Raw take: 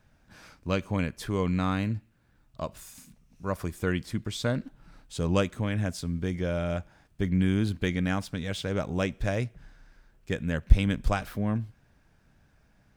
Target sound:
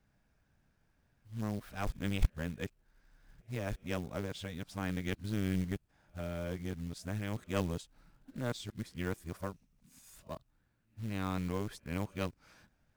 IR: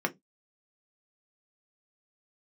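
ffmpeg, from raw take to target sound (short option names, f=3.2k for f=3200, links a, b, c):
-af "areverse,aeval=exprs='(tanh(3.55*val(0)+0.8)-tanh(0.8))/3.55':c=same,acrusher=bits=5:mode=log:mix=0:aa=0.000001,volume=-5dB"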